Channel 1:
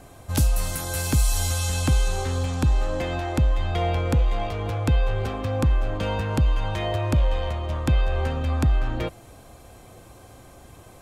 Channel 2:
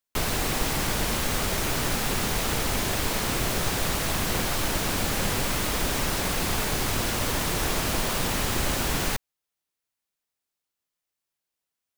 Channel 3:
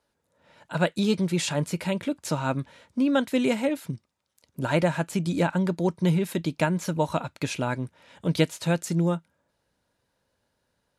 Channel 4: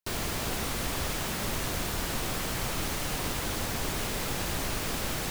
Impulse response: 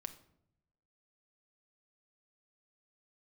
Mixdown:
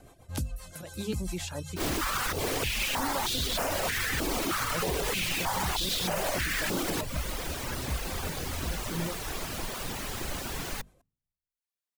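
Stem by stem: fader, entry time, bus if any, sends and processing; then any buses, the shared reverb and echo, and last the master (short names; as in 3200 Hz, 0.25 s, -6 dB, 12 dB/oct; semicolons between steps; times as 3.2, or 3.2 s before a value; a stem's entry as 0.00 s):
-4.0 dB, 0.00 s, no bus, no send, rotary speaker horn 7.5 Hz; auto duck -8 dB, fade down 0.50 s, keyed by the third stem
-8.0 dB, 1.65 s, no bus, send -13.5 dB, dry
-9.5 dB, 0.00 s, bus A, send -15 dB, rotary speaker horn 0.6 Hz
+2.5 dB, 1.70 s, bus A, send -6.5 dB, stepped high-pass 3.2 Hz 290–3600 Hz
bus A: 0.0 dB, auto swell 0.153 s; limiter -20.5 dBFS, peak gain reduction 6 dB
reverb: on, RT60 0.75 s, pre-delay 5 ms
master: reverb removal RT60 0.77 s; notches 50/100/150/200/250 Hz; limiter -20 dBFS, peak gain reduction 5.5 dB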